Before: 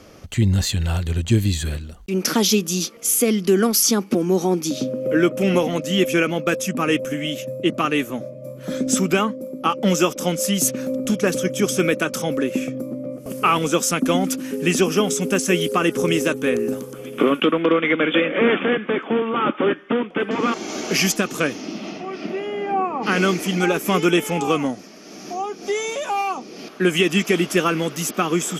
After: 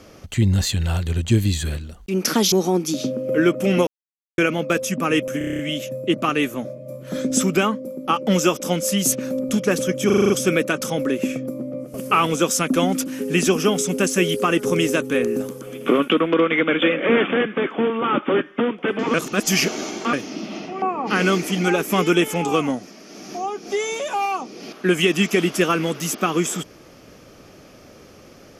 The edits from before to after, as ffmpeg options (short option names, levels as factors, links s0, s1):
-filter_complex "[0:a]asplit=20[s0][s1][s2][s3][s4][s5][s6][s7][s8][s9][s10][s11][s12][s13][s14][s15][s16][s17][s18][s19];[s0]atrim=end=2.522[s20];[s1]atrim=start=4.288:end=5.64,asetpts=PTS-STARTPTS,afade=t=out:st=1.348:d=0.004:c=hsin[s21];[s2]atrim=start=5.64:end=6.15,asetpts=PTS-STARTPTS,volume=0[s22];[s3]atrim=start=6.15:end=7.182,asetpts=PTS-STARTPTS,afade=t=in:d=0.004:c=hsin[s23];[s4]atrim=start=7.148:end=7.182[s24];[s5]atrim=start=7.148:end=7.182[s25];[s6]atrim=start=7.148:end=7.182[s26];[s7]atrim=start=7.148:end=7.182[s27];[s8]atrim=start=7.148:end=7.182[s28];[s9]atrim=start=7.148:end=7.182[s29];[s10]atrim=start=7.148:end=11.662[s30];[s11]atrim=start=11.618:end=11.662[s31];[s12]atrim=start=11.618:end=11.662[s32];[s13]atrim=start=11.618:end=11.662[s33];[s14]atrim=start=11.618:end=11.662[s34];[s15]atrim=start=11.618:end=11.662[s35];[s16]atrim=start=11.618:end=20.462[s36];[s17]atrim=start=20.458:end=21.452,asetpts=PTS-STARTPTS,areverse[s37];[s18]atrim=start=21.448:end=22.142[s38];[s19]atrim=start=22.778[s39];[s21][s22][s23]concat=n=3:v=0:a=1[s40];[s20][s40]acrossfade=d=0.004:c1=hsin:c2=hsin[s41];[s41][s24]acrossfade=d=0.004:c1=hsin:c2=hsin[s42];[s42][s25]acrossfade=d=0.004:c1=hsin:c2=hsin[s43];[s43][s26]acrossfade=d=0.004:c1=hsin:c2=hsin[s44];[s44][s27]acrossfade=d=0.004:c1=hsin:c2=hsin[s45];[s45][s28]acrossfade=d=0.004:c1=hsin:c2=hsin[s46];[s46][s29]acrossfade=d=0.004:c1=hsin:c2=hsin[s47];[s47][s30]acrossfade=d=0.004:c1=hsin:c2=hsin[s48];[s48][s31]acrossfade=d=0.004:c1=hsin:c2=hsin[s49];[s49][s32]acrossfade=d=0.004:c1=hsin:c2=hsin[s50];[s50][s33]acrossfade=d=0.004:c1=hsin:c2=hsin[s51];[s51][s34]acrossfade=d=0.004:c1=hsin:c2=hsin[s52];[s52][s35]acrossfade=d=0.004:c1=hsin:c2=hsin[s53];[s53][s36]acrossfade=d=0.004:c1=hsin:c2=hsin[s54];[s54][s37]acrossfade=d=0.004:c1=hsin:c2=hsin[s55];[s55][s38]acrossfade=d=0.004:c1=hsin:c2=hsin[s56];[s56][s39]acrossfade=d=0.004:c1=hsin:c2=hsin"